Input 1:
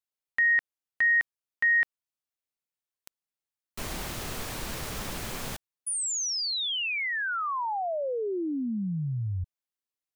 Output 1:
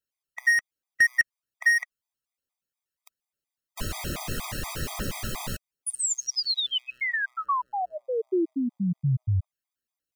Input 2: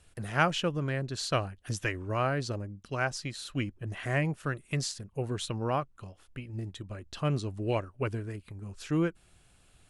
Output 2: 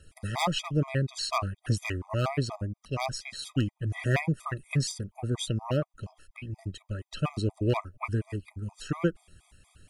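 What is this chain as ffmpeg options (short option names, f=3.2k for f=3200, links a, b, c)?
-af "aeval=exprs='0.0944*(abs(mod(val(0)/0.0944+3,4)-2)-1)':c=same,aphaser=in_gain=1:out_gain=1:delay=1.2:decay=0.34:speed=1.2:type=triangular,afftfilt=real='re*gt(sin(2*PI*4.2*pts/sr)*(1-2*mod(floor(b*sr/1024/640),2)),0)':imag='im*gt(sin(2*PI*4.2*pts/sr)*(1-2*mod(floor(b*sr/1024/640),2)),0)':win_size=1024:overlap=0.75,volume=4.5dB"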